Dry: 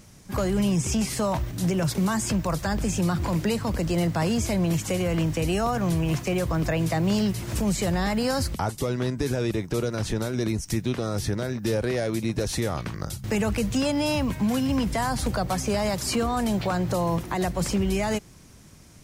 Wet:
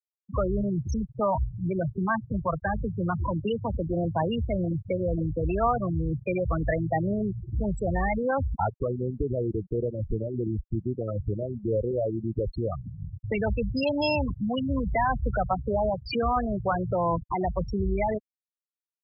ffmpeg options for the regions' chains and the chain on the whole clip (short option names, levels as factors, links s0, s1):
-filter_complex "[0:a]asettb=1/sr,asplit=3[s0][s1][s2];[s0]atrim=end=2.094[s3];[s1]atrim=start=2.09:end=4.05,asetpts=PTS-STARTPTS,afade=t=in:d=0.004:c=qsin,afade=t=out:st=1.956:d=0.004:c=qsin,highpass=f=60:w=0.5412,highpass=f=60:w=1.3066,aeval=exprs='val(0)+0.00251*(sin(2*PI*50*n/s)+sin(2*PI*2*50*n/s)/2+sin(2*PI*3*50*n/s)/3+sin(2*PI*4*50*n/s)/4+sin(2*PI*5*50*n/s)/5)':c=same[s4];[s2]atrim=start=4.046[s5];[s3][s4]acrossfade=d=0.004:c1=hsin:c2=qsin[s6];[s6][s5]acrossfade=d=0.004:c1=qsin:c2=hsin,afftfilt=real='re*gte(hypot(re,im),0.141)':imag='im*gte(hypot(re,im),0.141)':win_size=1024:overlap=0.75,equalizer=f=200:t=o:w=2.6:g=-11,volume=2"